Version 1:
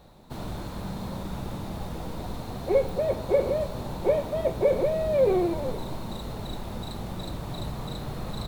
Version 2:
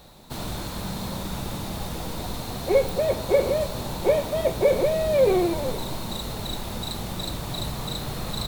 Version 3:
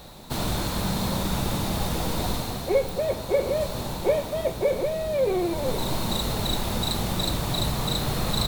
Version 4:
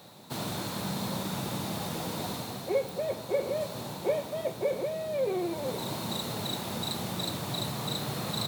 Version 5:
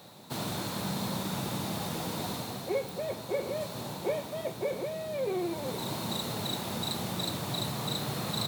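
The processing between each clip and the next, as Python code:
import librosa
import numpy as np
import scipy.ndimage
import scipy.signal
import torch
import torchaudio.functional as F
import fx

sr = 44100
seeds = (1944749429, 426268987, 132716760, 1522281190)

y1 = fx.high_shelf(x, sr, hz=2200.0, db=10.5)
y1 = y1 * 10.0 ** (2.0 / 20.0)
y2 = fx.rider(y1, sr, range_db=5, speed_s=0.5)
y3 = scipy.signal.sosfilt(scipy.signal.butter(4, 110.0, 'highpass', fs=sr, output='sos'), y2)
y3 = y3 * 10.0 ** (-6.0 / 20.0)
y4 = fx.dynamic_eq(y3, sr, hz=550.0, q=2.4, threshold_db=-40.0, ratio=4.0, max_db=-4)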